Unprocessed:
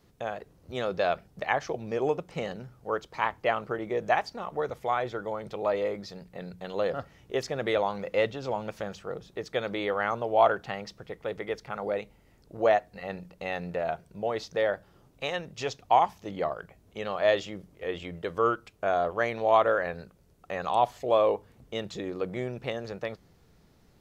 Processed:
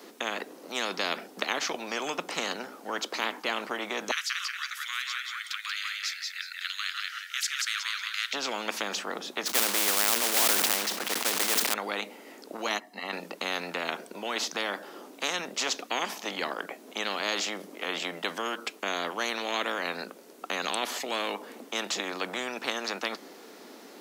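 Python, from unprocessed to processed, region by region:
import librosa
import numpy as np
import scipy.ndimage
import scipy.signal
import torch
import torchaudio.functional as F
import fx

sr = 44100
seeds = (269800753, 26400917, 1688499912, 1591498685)

y = fx.chain(x, sr, fx.steep_highpass(hz=1400.0, slope=72),
    fx.echo_feedback(ms=183, feedback_pct=23, wet_db=-5.5), at=(4.11, 8.33))
y = fx.chain(y, sr, fx.block_float(bits=3),
    fx.sustainer(db_per_s=69.0), at=(9.46, 11.74))
y = fx.chain(y, sr, fx.comb(ms=1.0, depth=0.77),
    fx.upward_expand(threshold_db=-42.0, expansion=1.5), at=(12.67, 13.13))
y = scipy.signal.sosfilt(scipy.signal.butter(8, 240.0, 'highpass', fs=sr, output='sos'), y)
y = fx.spectral_comp(y, sr, ratio=4.0)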